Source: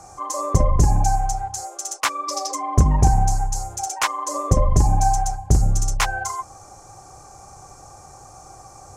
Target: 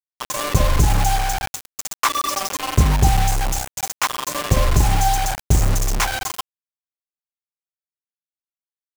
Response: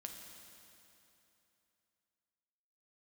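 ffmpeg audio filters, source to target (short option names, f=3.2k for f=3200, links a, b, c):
-filter_complex "[0:a]asettb=1/sr,asplit=3[a][b][c];[a]atrim=end=1.724[d];[b]atrim=start=1.72:end=2.54,asetpts=PTS-STARTPTS,afade=t=in:d=0.004:c=qsin,afade=t=out:st=0.816:d=0.004:c=qsin,equalizer=f=1.1k:t=o:w=0.31:g=6.5[e];[c]atrim=start=2.536[f];[d][e]acrossfade=d=0.004:c1=hsin:c2=qsin[g];[g][f]acrossfade=d=0.004:c1=qsin:c2=hsin,acrusher=bits=3:mix=0:aa=0.000001"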